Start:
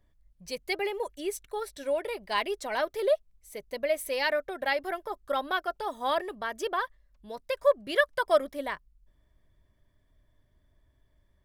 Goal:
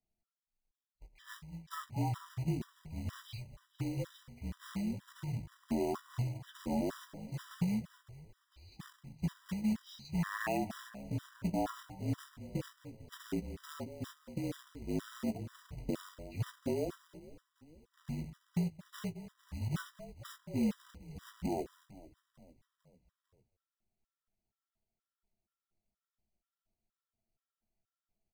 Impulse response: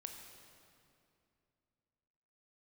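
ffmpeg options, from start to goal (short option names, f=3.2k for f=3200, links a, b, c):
-filter_complex "[0:a]afwtdn=0.0178,highpass=f=110:p=1,equalizer=f=2k:w=0.72:g=-3,bandreject=f=60:t=h:w=6,bandreject=f=120:t=h:w=6,bandreject=f=180:t=h:w=6,bandreject=f=240:t=h:w=6,bandreject=f=300:t=h:w=6,bandreject=f=360:t=h:w=6,bandreject=f=420:t=h:w=6,bandreject=f=480:t=h:w=6,acrossover=split=3900[a][b];[a]acompressor=threshold=-35dB:ratio=10[c];[c][b]amix=inputs=2:normalize=0,asplit=2[d][e];[e]adelay=90,highpass=300,lowpass=3.4k,asoftclip=type=hard:threshold=-32dB,volume=-14dB[f];[d][f]amix=inputs=2:normalize=0,afreqshift=-94,asetrate=17816,aresample=44100,acrusher=bits=3:mode=log:mix=0:aa=0.000001,asplit=2[g][h];[h]adelay=18,volume=-10dB[i];[g][i]amix=inputs=2:normalize=0,asplit=2[j][k];[k]asplit=4[l][m][n][o];[l]adelay=450,afreqshift=-63,volume=-19.5dB[p];[m]adelay=900,afreqshift=-126,volume=-24.7dB[q];[n]adelay=1350,afreqshift=-189,volume=-29.9dB[r];[o]adelay=1800,afreqshift=-252,volume=-35.1dB[s];[p][q][r][s]amix=inputs=4:normalize=0[t];[j][t]amix=inputs=2:normalize=0,afftfilt=real='re*gt(sin(2*PI*2.1*pts/sr)*(1-2*mod(floor(b*sr/1024/980),2)),0)':imag='im*gt(sin(2*PI*2.1*pts/sr)*(1-2*mod(floor(b*sr/1024/980),2)),0)':win_size=1024:overlap=0.75,volume=3.5dB"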